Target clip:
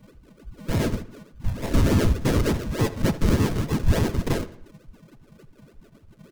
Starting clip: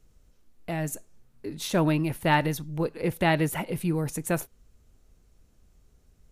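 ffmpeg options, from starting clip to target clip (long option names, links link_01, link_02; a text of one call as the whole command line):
ffmpeg -i in.wav -filter_complex "[0:a]afftfilt=real='real(if(lt(b,272),68*(eq(floor(b/68),0)*3+eq(floor(b/68),1)*0+eq(floor(b/68),2)*1+eq(floor(b/68),3)*2)+mod(b,68),b),0)':imag='imag(if(lt(b,272),68*(eq(floor(b/68),0)*3+eq(floor(b/68),1)*0+eq(floor(b/68),2)*1+eq(floor(b/68),3)*2)+mod(b,68),b),0)':win_size=2048:overlap=0.75,acrusher=samples=41:mix=1:aa=0.000001:lfo=1:lforange=24.6:lforate=3.4,adynamicequalizer=threshold=0.00251:dfrequency=6200:dqfactor=3.1:tfrequency=6200:tqfactor=3.1:attack=5:release=100:ratio=0.375:range=1.5:mode=boostabove:tftype=bell,alimiter=limit=-19.5dB:level=0:latency=1:release=37,asuperstop=centerf=760:order=20:qfactor=5.7,lowshelf=frequency=230:gain=9,asplit=2[link_01][link_02];[link_02]adelay=78,lowpass=frequency=4800:poles=1,volume=-15dB,asplit=2[link_03][link_04];[link_04]adelay=78,lowpass=frequency=4800:poles=1,volume=0.46,asplit=2[link_05][link_06];[link_06]adelay=78,lowpass=frequency=4800:poles=1,volume=0.46,asplit=2[link_07][link_08];[link_08]adelay=78,lowpass=frequency=4800:poles=1,volume=0.46[link_09];[link_03][link_05][link_07][link_09]amix=inputs=4:normalize=0[link_10];[link_01][link_10]amix=inputs=2:normalize=0,asplit=3[link_11][link_12][link_13];[link_12]asetrate=33038,aresample=44100,atempo=1.33484,volume=-14dB[link_14];[link_13]asetrate=35002,aresample=44100,atempo=1.25992,volume=-2dB[link_15];[link_11][link_14][link_15]amix=inputs=3:normalize=0" out.wav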